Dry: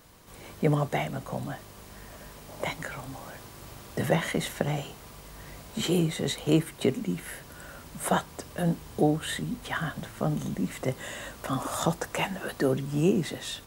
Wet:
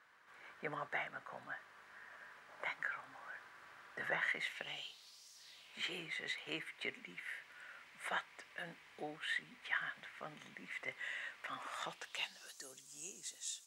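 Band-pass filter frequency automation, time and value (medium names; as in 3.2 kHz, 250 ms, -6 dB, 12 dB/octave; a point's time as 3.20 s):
band-pass filter, Q 3
4.19 s 1.6 kHz
5.32 s 5.9 kHz
5.80 s 2.1 kHz
11.82 s 2.1 kHz
12.59 s 7 kHz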